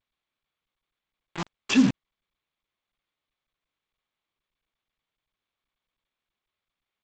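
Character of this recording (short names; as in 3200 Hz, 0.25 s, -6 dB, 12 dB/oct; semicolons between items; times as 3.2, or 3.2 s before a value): tremolo saw up 4.2 Hz, depth 90%; a quantiser's noise floor 6-bit, dither none; G.722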